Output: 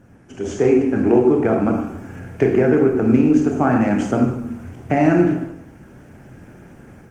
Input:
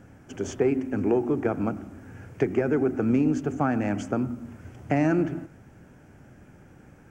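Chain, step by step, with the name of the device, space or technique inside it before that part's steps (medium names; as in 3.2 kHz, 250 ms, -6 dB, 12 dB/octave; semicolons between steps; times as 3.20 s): speakerphone in a meeting room (reverberation RT60 0.75 s, pre-delay 21 ms, DRR 1 dB; level rider gain up to 8 dB; Opus 24 kbps 48 kHz)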